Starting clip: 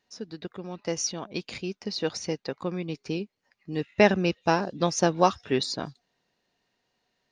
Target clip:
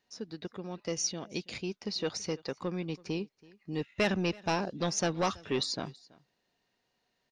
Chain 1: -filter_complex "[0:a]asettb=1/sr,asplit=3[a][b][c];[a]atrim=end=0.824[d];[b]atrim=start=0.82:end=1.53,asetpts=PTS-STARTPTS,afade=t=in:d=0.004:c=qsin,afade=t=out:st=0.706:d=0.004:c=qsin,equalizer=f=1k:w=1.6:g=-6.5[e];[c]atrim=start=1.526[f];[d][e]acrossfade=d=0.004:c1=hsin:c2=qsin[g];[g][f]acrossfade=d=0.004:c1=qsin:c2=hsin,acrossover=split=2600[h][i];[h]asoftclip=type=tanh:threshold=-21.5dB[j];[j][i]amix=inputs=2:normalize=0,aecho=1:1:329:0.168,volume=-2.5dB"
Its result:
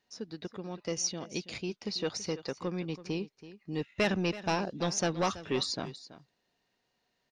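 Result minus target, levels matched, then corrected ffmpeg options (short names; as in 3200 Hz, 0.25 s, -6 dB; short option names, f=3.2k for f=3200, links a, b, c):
echo-to-direct +8 dB
-filter_complex "[0:a]asettb=1/sr,asplit=3[a][b][c];[a]atrim=end=0.824[d];[b]atrim=start=0.82:end=1.53,asetpts=PTS-STARTPTS,afade=t=in:d=0.004:c=qsin,afade=t=out:st=0.706:d=0.004:c=qsin,equalizer=f=1k:w=1.6:g=-6.5[e];[c]atrim=start=1.526[f];[d][e]acrossfade=d=0.004:c1=hsin:c2=qsin[g];[g][f]acrossfade=d=0.004:c1=qsin:c2=hsin,acrossover=split=2600[h][i];[h]asoftclip=type=tanh:threshold=-21.5dB[j];[j][i]amix=inputs=2:normalize=0,aecho=1:1:329:0.0668,volume=-2.5dB"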